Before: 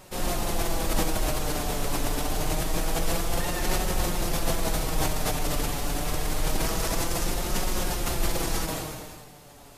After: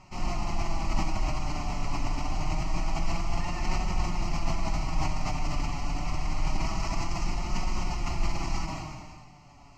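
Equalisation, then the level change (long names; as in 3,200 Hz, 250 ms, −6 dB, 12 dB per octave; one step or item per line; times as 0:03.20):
high-frequency loss of the air 110 metres
phaser with its sweep stopped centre 2,400 Hz, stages 8
0.0 dB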